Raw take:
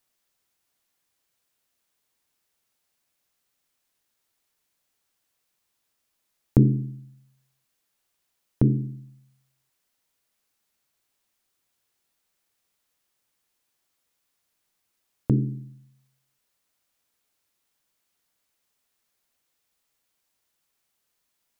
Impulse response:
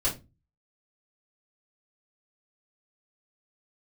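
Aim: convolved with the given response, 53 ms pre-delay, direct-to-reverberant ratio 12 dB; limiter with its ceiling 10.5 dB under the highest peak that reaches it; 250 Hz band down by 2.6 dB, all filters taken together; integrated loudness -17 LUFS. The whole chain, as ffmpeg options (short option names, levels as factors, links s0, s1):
-filter_complex "[0:a]equalizer=f=250:t=o:g=-3.5,alimiter=limit=0.178:level=0:latency=1,asplit=2[s0][s1];[1:a]atrim=start_sample=2205,adelay=53[s2];[s1][s2]afir=irnorm=-1:irlink=0,volume=0.1[s3];[s0][s3]amix=inputs=2:normalize=0,volume=4.47"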